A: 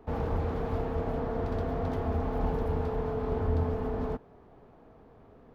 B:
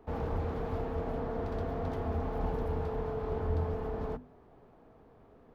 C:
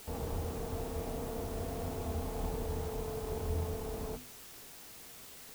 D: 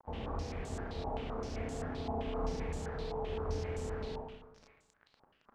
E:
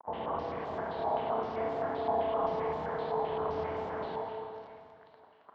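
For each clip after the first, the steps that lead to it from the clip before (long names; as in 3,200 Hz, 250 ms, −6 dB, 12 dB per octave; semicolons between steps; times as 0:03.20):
mains-hum notches 50/100/150/200/250 Hz; level −3 dB
running median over 25 samples; bit-depth reduction 8 bits, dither triangular; level −3.5 dB
running median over 25 samples; four-comb reverb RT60 1.2 s, combs from 28 ms, DRR 1 dB; low-pass on a step sequencer 7.7 Hz 890–7,500 Hz; level −3.5 dB
loudspeaker in its box 200–3,400 Hz, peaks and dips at 250 Hz −6 dB, 670 Hz +7 dB, 1,000 Hz +8 dB, 2,500 Hz −7 dB; dense smooth reverb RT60 2.4 s, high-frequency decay 0.9×, pre-delay 95 ms, DRR 5.5 dB; level +4 dB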